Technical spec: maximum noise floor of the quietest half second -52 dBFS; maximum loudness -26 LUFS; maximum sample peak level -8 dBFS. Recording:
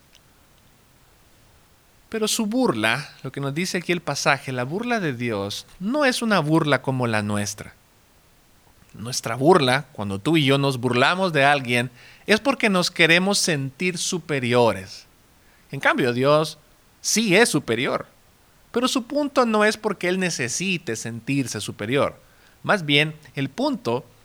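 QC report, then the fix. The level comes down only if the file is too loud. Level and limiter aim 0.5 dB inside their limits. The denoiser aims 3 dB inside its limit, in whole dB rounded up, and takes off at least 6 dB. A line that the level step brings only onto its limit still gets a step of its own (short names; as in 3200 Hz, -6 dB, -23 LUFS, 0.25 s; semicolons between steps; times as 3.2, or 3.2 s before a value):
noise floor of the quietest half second -56 dBFS: OK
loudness -21.5 LUFS: fail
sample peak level -3.0 dBFS: fail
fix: gain -5 dB; limiter -8.5 dBFS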